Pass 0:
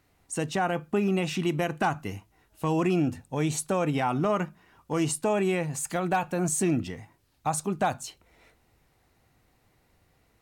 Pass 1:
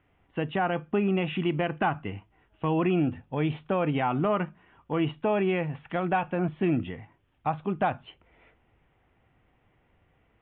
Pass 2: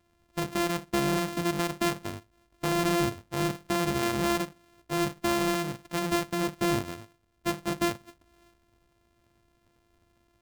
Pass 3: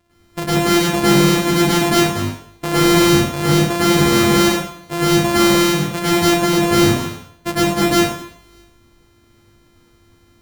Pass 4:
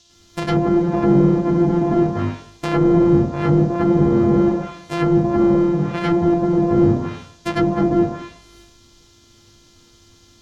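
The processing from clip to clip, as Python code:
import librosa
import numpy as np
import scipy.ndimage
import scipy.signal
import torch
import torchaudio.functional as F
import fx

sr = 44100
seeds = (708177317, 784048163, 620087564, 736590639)

y1 = scipy.signal.sosfilt(scipy.signal.butter(16, 3400.0, 'lowpass', fs=sr, output='sos'), x)
y2 = np.r_[np.sort(y1[:len(y1) // 128 * 128].reshape(-1, 128), axis=1).ravel(), y1[len(y1) // 128 * 128:]]
y2 = F.gain(torch.from_numpy(y2), -1.5).numpy()
y3 = fx.rev_plate(y2, sr, seeds[0], rt60_s=0.6, hf_ratio=0.95, predelay_ms=90, drr_db=-8.5)
y3 = F.gain(torch.from_numpy(y3), 5.5).numpy()
y4 = fx.env_lowpass_down(y3, sr, base_hz=620.0, full_db=-12.0)
y4 = fx.dmg_noise_band(y4, sr, seeds[1], low_hz=3000.0, high_hz=6900.0, level_db=-56.0)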